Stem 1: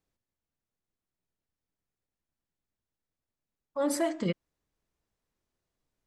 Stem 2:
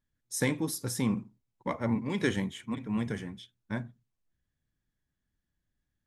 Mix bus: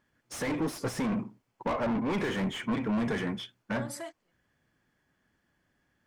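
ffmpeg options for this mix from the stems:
ffmpeg -i stem1.wav -i stem2.wav -filter_complex "[0:a]highpass=frequency=1000:poles=1,acompressor=threshold=-38dB:ratio=6,volume=2.5dB[link_01];[1:a]bandreject=frequency=3800:width=8.9,asplit=2[link_02][link_03];[link_03]highpass=frequency=720:poles=1,volume=33dB,asoftclip=type=tanh:threshold=-14.5dB[link_04];[link_02][link_04]amix=inputs=2:normalize=0,lowpass=frequency=1100:poles=1,volume=-6dB,volume=-4dB,asplit=2[link_05][link_06];[link_06]apad=whole_len=267388[link_07];[link_01][link_07]sidechaingate=range=-40dB:threshold=-60dB:ratio=16:detection=peak[link_08];[link_08][link_05]amix=inputs=2:normalize=0,alimiter=limit=-23.5dB:level=0:latency=1:release=457" out.wav

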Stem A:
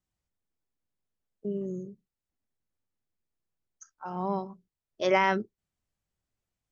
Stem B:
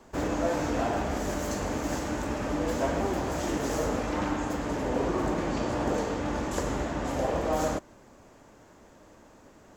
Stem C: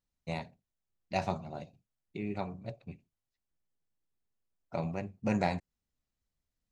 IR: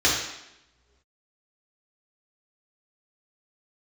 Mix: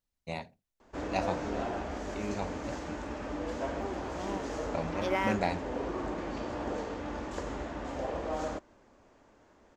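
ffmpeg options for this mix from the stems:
-filter_complex "[0:a]aeval=exprs='sgn(val(0))*max(abs(val(0))-0.00794,0)':channel_layout=same,volume=-6.5dB[link_01];[1:a]lowpass=5400,adelay=800,volume=-6.5dB[link_02];[2:a]volume=0.5dB[link_03];[link_01][link_02][link_03]amix=inputs=3:normalize=0,equalizer=frequency=140:width_type=o:width=0.86:gain=-6"

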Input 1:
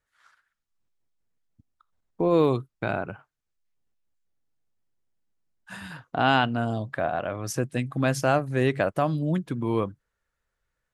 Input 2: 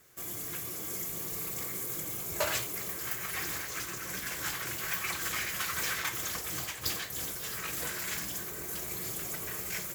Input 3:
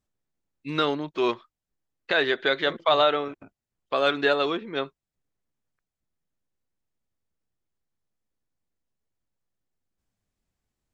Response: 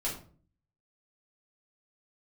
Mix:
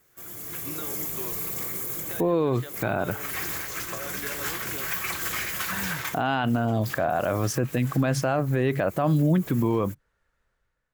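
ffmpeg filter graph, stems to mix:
-filter_complex "[0:a]volume=1dB,asplit=2[link_01][link_02];[1:a]highshelf=frequency=10000:gain=11.5,volume=-2.5dB[link_03];[2:a]acompressor=threshold=-31dB:ratio=6,volume=-13dB[link_04];[link_02]apad=whole_len=438655[link_05];[link_03][link_05]sidechaincompress=threshold=-35dB:ratio=10:attack=8.1:release=200[link_06];[link_01][link_06][link_04]amix=inputs=3:normalize=0,highshelf=frequency=4200:gain=-8.5,dynaudnorm=framelen=110:gausssize=9:maxgain=7.5dB,alimiter=limit=-14dB:level=0:latency=1:release=32"

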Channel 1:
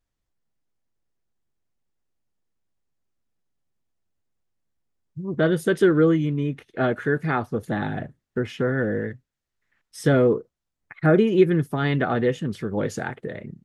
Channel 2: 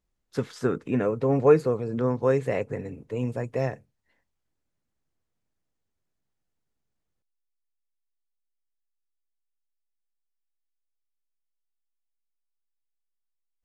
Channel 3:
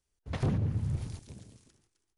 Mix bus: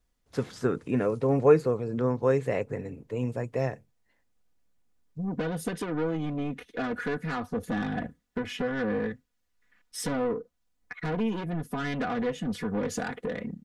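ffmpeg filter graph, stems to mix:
ffmpeg -i stem1.wav -i stem2.wav -i stem3.wav -filter_complex "[0:a]acrossover=split=130[link_01][link_02];[link_02]acompressor=threshold=-28dB:ratio=3[link_03];[link_01][link_03]amix=inputs=2:normalize=0,asoftclip=type=tanh:threshold=-28.5dB,aecho=1:1:4.1:0.77,volume=1.5dB[link_04];[1:a]volume=-1.5dB[link_05];[2:a]bass=frequency=250:gain=-14,treble=frequency=4000:gain=7,volume=-14.5dB[link_06];[link_04][link_05][link_06]amix=inputs=3:normalize=0" out.wav

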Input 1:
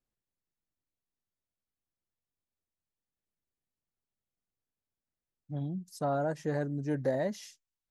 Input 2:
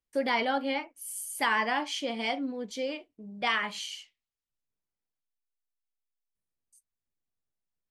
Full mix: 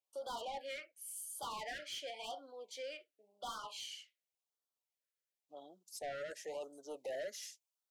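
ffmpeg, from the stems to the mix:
ffmpeg -i stem1.wav -i stem2.wav -filter_complex "[0:a]adynamicequalizer=threshold=0.00126:dfrequency=5100:dqfactor=0.7:tfrequency=5100:tqfactor=0.7:attack=5:release=100:ratio=0.375:range=2.5:mode=boostabove:tftype=highshelf,volume=-1.5dB[link_01];[1:a]volume=-7dB[link_02];[link_01][link_02]amix=inputs=2:normalize=0,highpass=frequency=510:width=0.5412,highpass=frequency=510:width=1.3066,asoftclip=type=tanh:threshold=-38dB,afftfilt=real='re*(1-between(b*sr/1024,870*pow(2200/870,0.5+0.5*sin(2*PI*0.92*pts/sr))/1.41,870*pow(2200/870,0.5+0.5*sin(2*PI*0.92*pts/sr))*1.41))':imag='im*(1-between(b*sr/1024,870*pow(2200/870,0.5+0.5*sin(2*PI*0.92*pts/sr))/1.41,870*pow(2200/870,0.5+0.5*sin(2*PI*0.92*pts/sr))*1.41))':win_size=1024:overlap=0.75" out.wav

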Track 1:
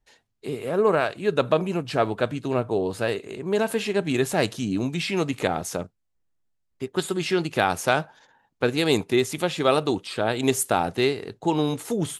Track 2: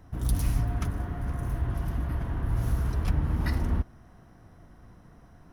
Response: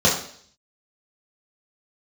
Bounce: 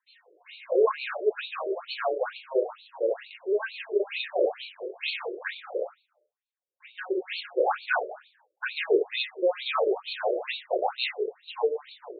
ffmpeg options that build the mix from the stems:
-filter_complex "[0:a]aemphasis=mode=production:type=bsi,volume=-4.5dB,asplit=2[link_01][link_02];[link_02]volume=-15dB[link_03];[1:a]volume=-17dB,asplit=2[link_04][link_05];[link_05]volume=-17.5dB[link_06];[2:a]atrim=start_sample=2205[link_07];[link_03][link_06]amix=inputs=2:normalize=0[link_08];[link_08][link_07]afir=irnorm=-1:irlink=0[link_09];[link_01][link_04][link_09]amix=inputs=3:normalize=0,afftfilt=real='re*between(b*sr/1024,430*pow(3200/430,0.5+0.5*sin(2*PI*2.2*pts/sr))/1.41,430*pow(3200/430,0.5+0.5*sin(2*PI*2.2*pts/sr))*1.41)':imag='im*between(b*sr/1024,430*pow(3200/430,0.5+0.5*sin(2*PI*2.2*pts/sr))/1.41,430*pow(3200/430,0.5+0.5*sin(2*PI*2.2*pts/sr))*1.41)':win_size=1024:overlap=0.75"

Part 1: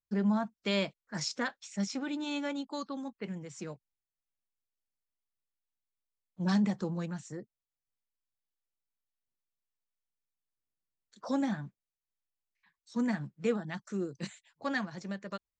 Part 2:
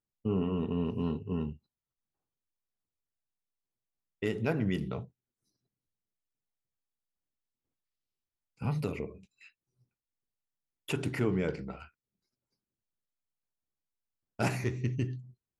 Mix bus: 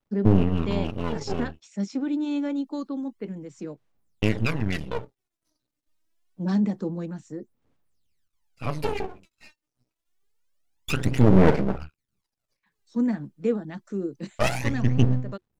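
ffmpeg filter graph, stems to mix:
ffmpeg -i stem1.wav -i stem2.wav -filter_complex "[0:a]equalizer=frequency=320:width_type=o:width=1.7:gain=14.5,volume=-4dB[link_01];[1:a]aphaser=in_gain=1:out_gain=1:delay=3.3:decay=0.8:speed=0.26:type=sinusoidal,acontrast=67,aeval=exprs='max(val(0),0)':channel_layout=same,volume=1dB,asplit=2[link_02][link_03];[link_03]apad=whole_len=687759[link_04];[link_01][link_04]sidechaincompress=threshold=-23dB:ratio=8:attack=16:release=225[link_05];[link_05][link_02]amix=inputs=2:normalize=0,highshelf=frequency=11000:gain=-6,bandreject=frequency=360:width=12" out.wav

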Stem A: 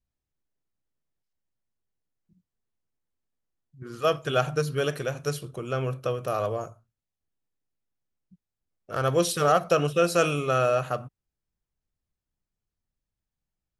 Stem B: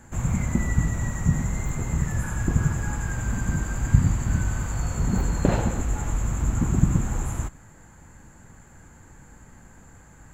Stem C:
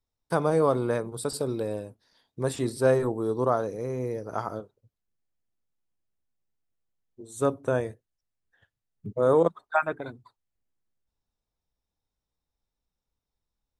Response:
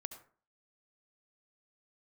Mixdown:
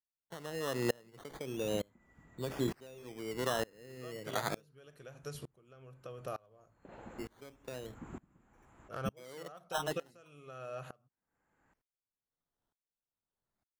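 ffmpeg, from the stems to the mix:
-filter_complex "[0:a]acompressor=threshold=-29dB:ratio=5,volume=-5.5dB,asplit=2[link_01][link_02];[1:a]acrossover=split=230 3900:gain=0.178 1 0.126[link_03][link_04][link_05];[link_03][link_04][link_05]amix=inputs=3:normalize=0,adelay=1400,volume=-13dB[link_06];[2:a]highpass=frequency=110:width=0.5412,highpass=frequency=110:width=1.3066,acompressor=threshold=-28dB:ratio=6,acrusher=samples=15:mix=1:aa=0.000001:lfo=1:lforange=9:lforate=0.33,volume=2.5dB[link_07];[link_02]apad=whole_len=517522[link_08];[link_06][link_08]sidechaincompress=threshold=-52dB:ratio=5:attack=5.7:release=319[link_09];[link_01][link_09][link_07]amix=inputs=3:normalize=0,aeval=exprs='val(0)*pow(10,-29*if(lt(mod(-1.1*n/s,1),2*abs(-1.1)/1000),1-mod(-1.1*n/s,1)/(2*abs(-1.1)/1000),(mod(-1.1*n/s,1)-2*abs(-1.1)/1000)/(1-2*abs(-1.1)/1000))/20)':channel_layout=same"

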